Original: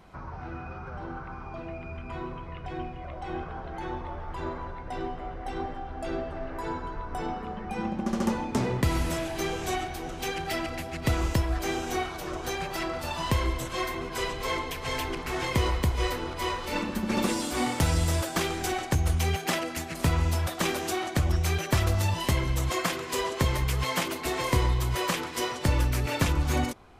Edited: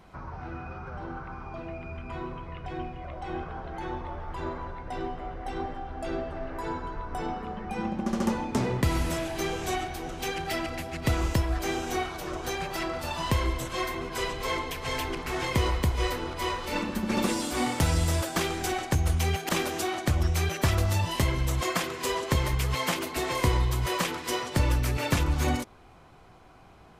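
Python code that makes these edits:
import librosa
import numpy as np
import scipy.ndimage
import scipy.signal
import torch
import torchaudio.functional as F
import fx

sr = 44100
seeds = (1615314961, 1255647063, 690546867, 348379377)

y = fx.edit(x, sr, fx.cut(start_s=19.49, length_s=1.09), tone=tone)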